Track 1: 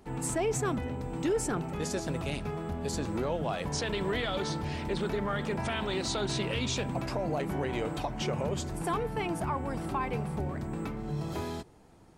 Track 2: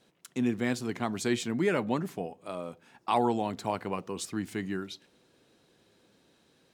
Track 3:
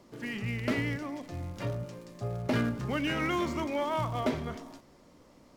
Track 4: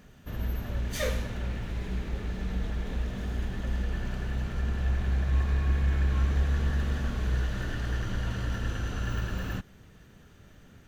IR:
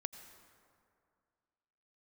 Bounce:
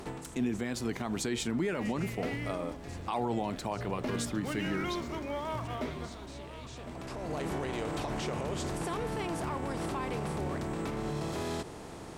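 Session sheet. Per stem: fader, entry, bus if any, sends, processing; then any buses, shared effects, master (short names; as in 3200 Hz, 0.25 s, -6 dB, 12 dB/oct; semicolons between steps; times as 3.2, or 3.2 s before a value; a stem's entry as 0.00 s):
-2.5 dB, 0.00 s, no send, no echo send, per-bin compression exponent 0.6; limiter -24 dBFS, peak gain reduction 8 dB; auto duck -13 dB, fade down 0.30 s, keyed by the second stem
+1.0 dB, 0.00 s, no send, no echo send, dry
-5.5 dB, 1.55 s, no send, echo send -14 dB, dry
-13.0 dB, 0.00 s, no send, no echo send, compressor, threshold -36 dBFS, peak gain reduction 14.5 dB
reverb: off
echo: echo 1.06 s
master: limiter -23 dBFS, peak gain reduction 9.5 dB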